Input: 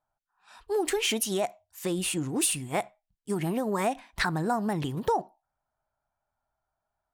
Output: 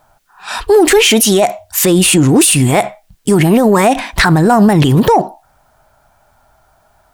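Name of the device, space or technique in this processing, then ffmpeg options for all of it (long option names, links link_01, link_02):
mastering chain: -af "equalizer=frequency=970:width_type=o:width=0.77:gain=-1.5,acompressor=threshold=-36dB:ratio=1.5,asoftclip=type=tanh:threshold=-20.5dB,alimiter=level_in=32.5dB:limit=-1dB:release=50:level=0:latency=1,volume=-1dB"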